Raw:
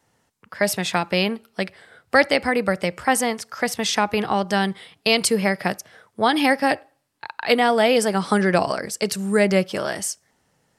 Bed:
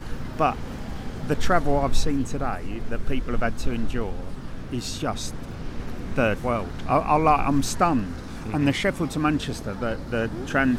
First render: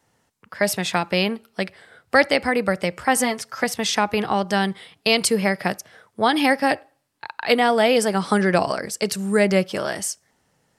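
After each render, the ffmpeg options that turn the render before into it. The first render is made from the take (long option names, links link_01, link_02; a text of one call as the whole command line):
ffmpeg -i in.wav -filter_complex "[0:a]asettb=1/sr,asplit=3[link_01][link_02][link_03];[link_01]atrim=end=3.164[link_04];[link_02]atrim=start=3.16:end=3.64,asetpts=PTS-STARTPTS,afade=type=in:duration=0.004:curve=qsin,afade=type=out:start_time=0.476:duration=0.004:curve=qsin,aecho=1:1:7.5:0.65,atrim=end_sample=21168[link_05];[link_03]atrim=start=3.636[link_06];[link_04][link_05]acrossfade=duration=0.004:curve1=hsin:curve2=qsin[link_07];[link_07][link_06]acrossfade=duration=0.004:curve1=qsin:curve2=hsin" out.wav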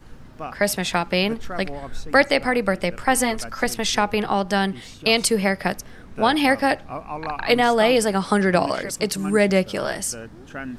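ffmpeg -i in.wav -i bed.wav -filter_complex "[1:a]volume=-11.5dB[link_01];[0:a][link_01]amix=inputs=2:normalize=0" out.wav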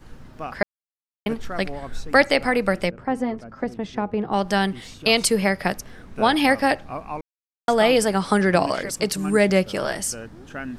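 ffmpeg -i in.wav -filter_complex "[0:a]asplit=3[link_01][link_02][link_03];[link_01]afade=type=out:start_time=2.89:duration=0.02[link_04];[link_02]bandpass=frequency=210:width_type=q:width=0.54,afade=type=in:start_time=2.89:duration=0.02,afade=type=out:start_time=4.32:duration=0.02[link_05];[link_03]afade=type=in:start_time=4.32:duration=0.02[link_06];[link_04][link_05][link_06]amix=inputs=3:normalize=0,asplit=5[link_07][link_08][link_09][link_10][link_11];[link_07]atrim=end=0.63,asetpts=PTS-STARTPTS,afade=type=out:start_time=0.626:duration=0.004:curve=hsin[link_12];[link_08]atrim=start=0.63:end=1.26,asetpts=PTS-STARTPTS,volume=0[link_13];[link_09]atrim=start=1.26:end=7.21,asetpts=PTS-STARTPTS,afade=type=in:duration=0.004:curve=hsin,afade=type=out:start_time=5.946:duration=0.004:curve=hsin[link_14];[link_10]atrim=start=7.21:end=7.68,asetpts=PTS-STARTPTS,volume=0[link_15];[link_11]atrim=start=7.68,asetpts=PTS-STARTPTS,afade=type=in:duration=0.004:curve=hsin[link_16];[link_12][link_13][link_14][link_15][link_16]concat=n=5:v=0:a=1" out.wav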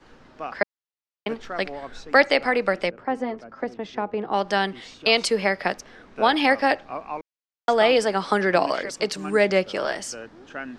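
ffmpeg -i in.wav -filter_complex "[0:a]acrossover=split=260 6700:gain=0.2 1 0.0794[link_01][link_02][link_03];[link_01][link_02][link_03]amix=inputs=3:normalize=0" out.wav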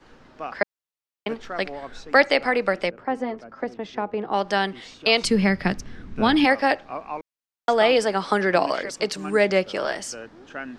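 ffmpeg -i in.wav -filter_complex "[0:a]asplit=3[link_01][link_02][link_03];[link_01]afade=type=out:start_time=5.23:duration=0.02[link_04];[link_02]asubboost=boost=9.5:cutoff=190,afade=type=in:start_time=5.23:duration=0.02,afade=type=out:start_time=6.44:duration=0.02[link_05];[link_03]afade=type=in:start_time=6.44:duration=0.02[link_06];[link_04][link_05][link_06]amix=inputs=3:normalize=0" out.wav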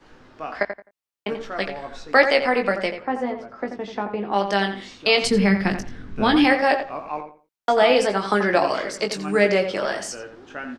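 ffmpeg -i in.wav -filter_complex "[0:a]asplit=2[link_01][link_02];[link_02]adelay=20,volume=-6.5dB[link_03];[link_01][link_03]amix=inputs=2:normalize=0,asplit=2[link_04][link_05];[link_05]adelay=86,lowpass=frequency=2400:poles=1,volume=-8dB,asplit=2[link_06][link_07];[link_07]adelay=86,lowpass=frequency=2400:poles=1,volume=0.24,asplit=2[link_08][link_09];[link_09]adelay=86,lowpass=frequency=2400:poles=1,volume=0.24[link_10];[link_04][link_06][link_08][link_10]amix=inputs=4:normalize=0" out.wav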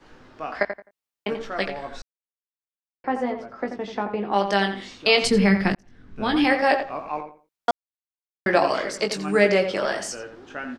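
ffmpeg -i in.wav -filter_complex "[0:a]asplit=6[link_01][link_02][link_03][link_04][link_05][link_06];[link_01]atrim=end=2.02,asetpts=PTS-STARTPTS,afade=type=out:start_time=2.016:duration=0.004:curve=hsin[link_07];[link_02]atrim=start=2.02:end=3.04,asetpts=PTS-STARTPTS,volume=0[link_08];[link_03]atrim=start=3.04:end=5.75,asetpts=PTS-STARTPTS,afade=type=in:duration=0.004:curve=hsin,afade=type=out:start_time=2.706:duration=0.004:curve=hsin[link_09];[link_04]atrim=start=5.75:end=7.71,asetpts=PTS-STARTPTS,afade=type=in:duration=1,afade=type=out:start_time=1.956:duration=0.004:curve=hsin[link_10];[link_05]atrim=start=7.71:end=8.46,asetpts=PTS-STARTPTS,volume=0[link_11];[link_06]atrim=start=8.46,asetpts=PTS-STARTPTS,afade=type=in:duration=0.004:curve=hsin[link_12];[link_07][link_08][link_09][link_10][link_11][link_12]concat=n=6:v=0:a=1" out.wav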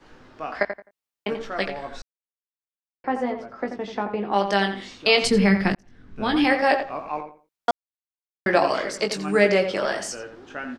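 ffmpeg -i in.wav -af anull out.wav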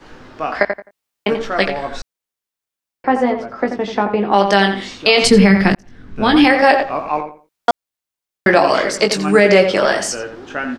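ffmpeg -i in.wav -af "alimiter=level_in=10dB:limit=-1dB:release=50:level=0:latency=1" out.wav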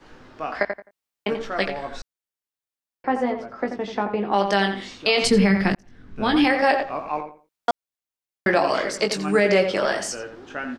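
ffmpeg -i in.wav -af "volume=-7.5dB" out.wav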